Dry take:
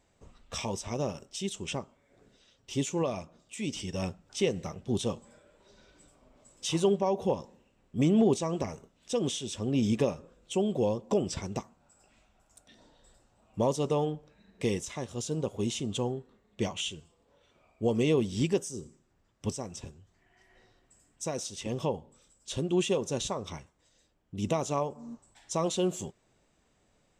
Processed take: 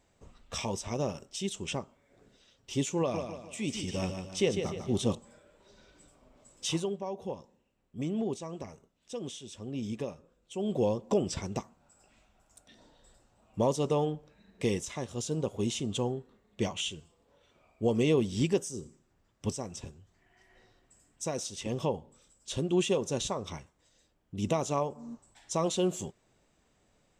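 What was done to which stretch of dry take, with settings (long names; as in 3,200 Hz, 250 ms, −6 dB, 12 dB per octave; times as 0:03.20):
0:02.99–0:05.15: repeating echo 149 ms, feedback 41%, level −7 dB
0:06.71–0:10.72: duck −9 dB, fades 0.15 s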